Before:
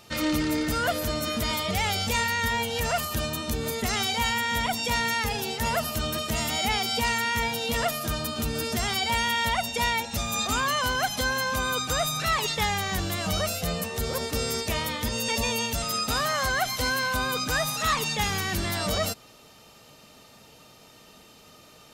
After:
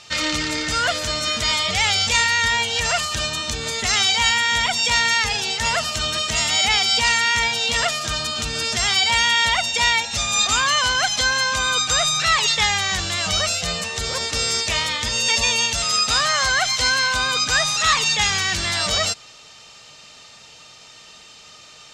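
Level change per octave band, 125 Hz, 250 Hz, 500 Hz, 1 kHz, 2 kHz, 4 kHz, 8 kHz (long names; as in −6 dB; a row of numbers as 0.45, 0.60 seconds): −0.5, −3.5, +0.5, +4.5, +8.5, +11.0, +10.0 decibels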